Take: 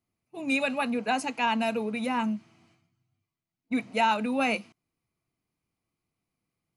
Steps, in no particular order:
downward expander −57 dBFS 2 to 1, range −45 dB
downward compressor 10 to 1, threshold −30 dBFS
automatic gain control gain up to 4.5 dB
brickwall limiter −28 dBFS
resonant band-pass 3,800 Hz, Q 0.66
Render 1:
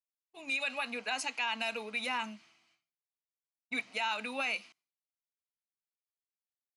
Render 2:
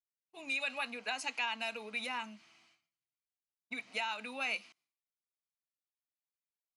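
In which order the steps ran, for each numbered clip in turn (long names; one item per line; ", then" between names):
resonant band-pass, then downward compressor, then brickwall limiter, then automatic gain control, then downward expander
downward expander, then downward compressor, then resonant band-pass, then brickwall limiter, then automatic gain control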